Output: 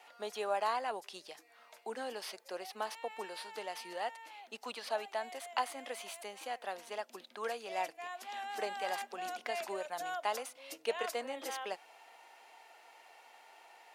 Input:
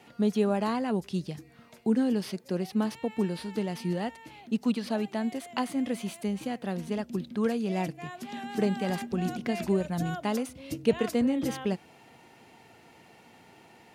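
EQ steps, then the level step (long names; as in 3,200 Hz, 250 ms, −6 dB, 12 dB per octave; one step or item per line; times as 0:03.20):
four-pole ladder high-pass 540 Hz, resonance 25%
+3.5 dB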